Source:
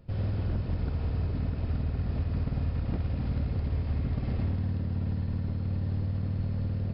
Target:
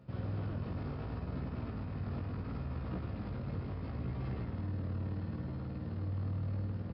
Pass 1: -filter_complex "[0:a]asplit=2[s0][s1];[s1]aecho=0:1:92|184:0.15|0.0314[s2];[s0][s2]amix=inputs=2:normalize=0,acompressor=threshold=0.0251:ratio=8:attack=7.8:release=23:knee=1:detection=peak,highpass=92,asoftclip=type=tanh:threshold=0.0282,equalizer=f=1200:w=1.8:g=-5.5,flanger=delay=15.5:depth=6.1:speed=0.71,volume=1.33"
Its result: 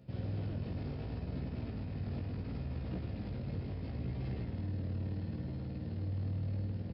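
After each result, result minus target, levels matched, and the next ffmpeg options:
1 kHz band -5.0 dB; 4 kHz band +2.5 dB
-filter_complex "[0:a]asplit=2[s0][s1];[s1]aecho=0:1:92|184:0.15|0.0314[s2];[s0][s2]amix=inputs=2:normalize=0,acompressor=threshold=0.0251:ratio=8:attack=7.8:release=23:knee=1:detection=peak,highpass=92,asoftclip=type=tanh:threshold=0.0282,equalizer=f=1200:w=1.8:g=5.5,flanger=delay=15.5:depth=6.1:speed=0.71,volume=1.33"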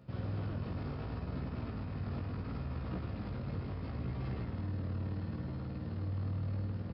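4 kHz band +3.0 dB
-filter_complex "[0:a]asplit=2[s0][s1];[s1]aecho=0:1:92|184:0.15|0.0314[s2];[s0][s2]amix=inputs=2:normalize=0,acompressor=threshold=0.0251:ratio=8:attack=7.8:release=23:knee=1:detection=peak,highpass=92,highshelf=f=3200:g=-5,asoftclip=type=tanh:threshold=0.0282,equalizer=f=1200:w=1.8:g=5.5,flanger=delay=15.5:depth=6.1:speed=0.71,volume=1.33"

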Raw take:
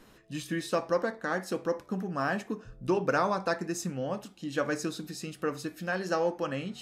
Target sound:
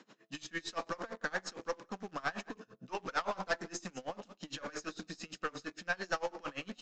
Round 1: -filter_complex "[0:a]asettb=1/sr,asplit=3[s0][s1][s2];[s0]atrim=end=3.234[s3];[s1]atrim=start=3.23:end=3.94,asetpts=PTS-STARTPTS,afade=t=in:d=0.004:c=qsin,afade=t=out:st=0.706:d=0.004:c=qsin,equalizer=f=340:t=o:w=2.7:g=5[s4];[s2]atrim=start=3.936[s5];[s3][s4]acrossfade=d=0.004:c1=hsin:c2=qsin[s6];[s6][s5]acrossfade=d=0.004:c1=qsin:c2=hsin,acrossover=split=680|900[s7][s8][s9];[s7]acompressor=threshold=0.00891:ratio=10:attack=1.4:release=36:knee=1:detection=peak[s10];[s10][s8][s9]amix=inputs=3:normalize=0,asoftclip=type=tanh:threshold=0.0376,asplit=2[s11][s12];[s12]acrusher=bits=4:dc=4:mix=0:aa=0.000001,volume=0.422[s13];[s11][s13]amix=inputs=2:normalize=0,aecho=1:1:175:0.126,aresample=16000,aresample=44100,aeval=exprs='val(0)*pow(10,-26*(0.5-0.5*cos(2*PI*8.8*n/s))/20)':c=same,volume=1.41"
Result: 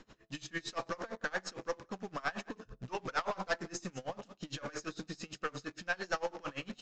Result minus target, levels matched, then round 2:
125 Hz band +4.0 dB
-filter_complex "[0:a]asettb=1/sr,asplit=3[s0][s1][s2];[s0]atrim=end=3.234[s3];[s1]atrim=start=3.23:end=3.94,asetpts=PTS-STARTPTS,afade=t=in:d=0.004:c=qsin,afade=t=out:st=0.706:d=0.004:c=qsin,equalizer=f=340:t=o:w=2.7:g=5[s4];[s2]atrim=start=3.936[s5];[s3][s4]acrossfade=d=0.004:c1=hsin:c2=qsin[s6];[s6][s5]acrossfade=d=0.004:c1=qsin:c2=hsin,acrossover=split=680|900[s7][s8][s9];[s7]acompressor=threshold=0.00891:ratio=10:attack=1.4:release=36:knee=1:detection=peak,highpass=f=170:w=0.5412,highpass=f=170:w=1.3066[s10];[s10][s8][s9]amix=inputs=3:normalize=0,asoftclip=type=tanh:threshold=0.0376,asplit=2[s11][s12];[s12]acrusher=bits=4:dc=4:mix=0:aa=0.000001,volume=0.422[s13];[s11][s13]amix=inputs=2:normalize=0,aecho=1:1:175:0.126,aresample=16000,aresample=44100,aeval=exprs='val(0)*pow(10,-26*(0.5-0.5*cos(2*PI*8.8*n/s))/20)':c=same,volume=1.41"

